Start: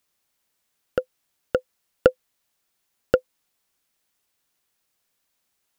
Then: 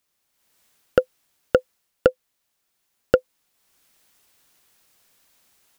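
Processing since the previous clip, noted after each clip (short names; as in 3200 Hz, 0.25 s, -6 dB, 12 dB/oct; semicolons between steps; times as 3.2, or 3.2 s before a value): AGC gain up to 13.5 dB; gain -1 dB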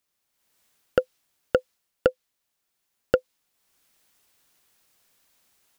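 dynamic EQ 4100 Hz, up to +4 dB, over -45 dBFS, Q 0.71; gain -4 dB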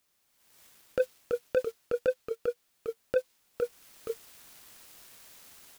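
negative-ratio compressor -25 dBFS, ratio -0.5; echoes that change speed 0.274 s, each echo -1 st, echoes 2, each echo -6 dB; sample leveller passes 2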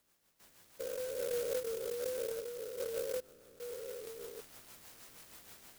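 stepped spectrum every 0.4 s; rotary speaker horn 6.3 Hz; clock jitter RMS 0.096 ms; gain +4.5 dB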